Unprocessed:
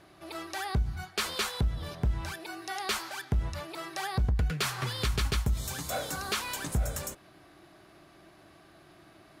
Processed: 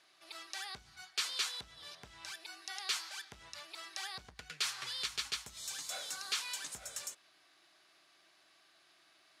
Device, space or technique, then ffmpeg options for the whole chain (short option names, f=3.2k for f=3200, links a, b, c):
piezo pickup straight into a mixer: -af "lowpass=5.5k,aderivative,volume=4.5dB"